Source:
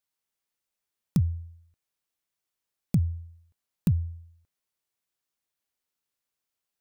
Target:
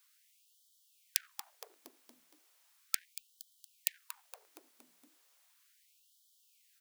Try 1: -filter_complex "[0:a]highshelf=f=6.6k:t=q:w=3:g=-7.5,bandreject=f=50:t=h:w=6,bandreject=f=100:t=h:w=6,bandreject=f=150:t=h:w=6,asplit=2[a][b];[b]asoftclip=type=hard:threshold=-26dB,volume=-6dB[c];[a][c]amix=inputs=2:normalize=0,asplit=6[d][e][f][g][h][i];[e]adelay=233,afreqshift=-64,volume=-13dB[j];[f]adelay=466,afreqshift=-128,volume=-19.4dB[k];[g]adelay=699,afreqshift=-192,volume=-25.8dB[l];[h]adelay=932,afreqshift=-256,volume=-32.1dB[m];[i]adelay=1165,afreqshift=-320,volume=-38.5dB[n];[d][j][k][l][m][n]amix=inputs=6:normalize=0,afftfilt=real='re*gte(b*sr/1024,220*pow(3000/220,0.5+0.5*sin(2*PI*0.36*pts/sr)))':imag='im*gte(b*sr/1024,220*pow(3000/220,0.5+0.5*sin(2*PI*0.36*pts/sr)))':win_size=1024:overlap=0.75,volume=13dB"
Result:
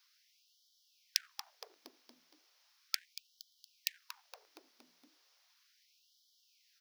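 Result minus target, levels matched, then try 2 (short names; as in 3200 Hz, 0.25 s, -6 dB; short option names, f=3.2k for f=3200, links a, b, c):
8000 Hz band -2.5 dB
-filter_complex "[0:a]bandreject=f=50:t=h:w=6,bandreject=f=100:t=h:w=6,bandreject=f=150:t=h:w=6,asplit=2[a][b];[b]asoftclip=type=hard:threshold=-26dB,volume=-6dB[c];[a][c]amix=inputs=2:normalize=0,asplit=6[d][e][f][g][h][i];[e]adelay=233,afreqshift=-64,volume=-13dB[j];[f]adelay=466,afreqshift=-128,volume=-19.4dB[k];[g]adelay=699,afreqshift=-192,volume=-25.8dB[l];[h]adelay=932,afreqshift=-256,volume=-32.1dB[m];[i]adelay=1165,afreqshift=-320,volume=-38.5dB[n];[d][j][k][l][m][n]amix=inputs=6:normalize=0,afftfilt=real='re*gte(b*sr/1024,220*pow(3000/220,0.5+0.5*sin(2*PI*0.36*pts/sr)))':imag='im*gte(b*sr/1024,220*pow(3000/220,0.5+0.5*sin(2*PI*0.36*pts/sr)))':win_size=1024:overlap=0.75,volume=13dB"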